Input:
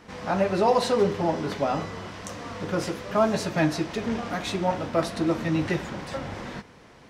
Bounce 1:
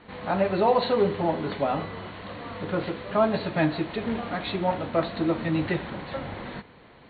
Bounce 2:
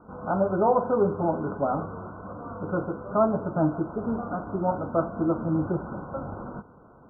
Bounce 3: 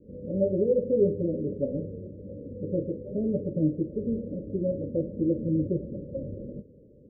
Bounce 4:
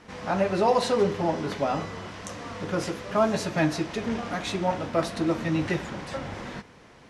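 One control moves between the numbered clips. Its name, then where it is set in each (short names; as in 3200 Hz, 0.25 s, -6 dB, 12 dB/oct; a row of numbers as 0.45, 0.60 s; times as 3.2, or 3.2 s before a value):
Chebyshev low-pass, frequency: 4400, 1500, 590, 12000 Hz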